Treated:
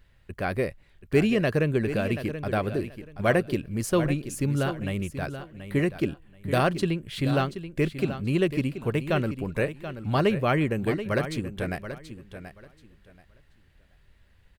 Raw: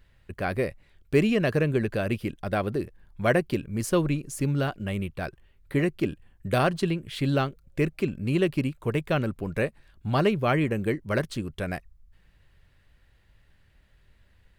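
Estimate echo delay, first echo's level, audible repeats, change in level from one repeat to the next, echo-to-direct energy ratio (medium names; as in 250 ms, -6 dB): 731 ms, -11.0 dB, 2, -13.5 dB, -11.0 dB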